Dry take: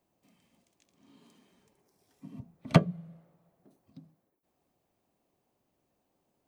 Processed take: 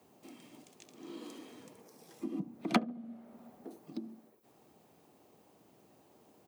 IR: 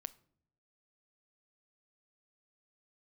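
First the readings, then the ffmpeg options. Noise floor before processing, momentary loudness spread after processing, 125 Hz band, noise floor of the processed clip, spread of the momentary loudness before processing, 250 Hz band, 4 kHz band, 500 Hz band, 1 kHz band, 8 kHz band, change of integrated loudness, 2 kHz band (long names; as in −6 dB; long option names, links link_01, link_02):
−79 dBFS, 24 LU, −17.5 dB, −66 dBFS, 17 LU, −3.0 dB, −1.5 dB, −6.5 dB, −2.0 dB, +0.5 dB, −13.0 dB, −2.5 dB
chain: -filter_complex "[0:a]asplit=2[link_01][link_02];[link_02]adynamicsmooth=sensitivity=5.5:basefreq=770,volume=-9dB[link_03];[link_01][link_03]amix=inputs=2:normalize=0,asplit=2[link_04][link_05];[link_05]adelay=69,lowpass=frequency=830:poles=1,volume=-19dB,asplit=2[link_06][link_07];[link_07]adelay=69,lowpass=frequency=830:poles=1,volume=0.49,asplit=2[link_08][link_09];[link_09]adelay=69,lowpass=frequency=830:poles=1,volume=0.49,asplit=2[link_10][link_11];[link_11]adelay=69,lowpass=frequency=830:poles=1,volume=0.49[link_12];[link_04][link_06][link_08][link_10][link_12]amix=inputs=5:normalize=0,afreqshift=65,acompressor=threshold=-51dB:ratio=2.5,volume=12.5dB"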